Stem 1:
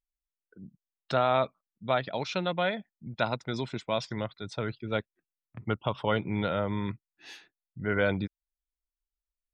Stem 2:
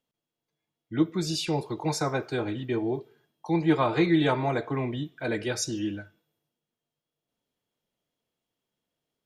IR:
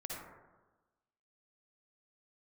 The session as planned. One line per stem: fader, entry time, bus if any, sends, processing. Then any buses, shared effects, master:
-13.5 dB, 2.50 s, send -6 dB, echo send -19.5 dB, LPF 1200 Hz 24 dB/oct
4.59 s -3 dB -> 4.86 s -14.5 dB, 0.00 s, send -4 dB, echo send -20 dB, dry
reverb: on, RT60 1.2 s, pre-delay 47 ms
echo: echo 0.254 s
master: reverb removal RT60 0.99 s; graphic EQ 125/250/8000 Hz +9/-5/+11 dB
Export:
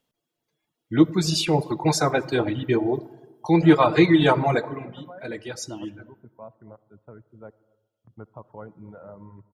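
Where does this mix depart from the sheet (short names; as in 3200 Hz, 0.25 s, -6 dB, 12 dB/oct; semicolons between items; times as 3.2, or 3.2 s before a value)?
stem 2 -3.0 dB -> +5.0 dB; master: missing graphic EQ 125/250/8000 Hz +9/-5/+11 dB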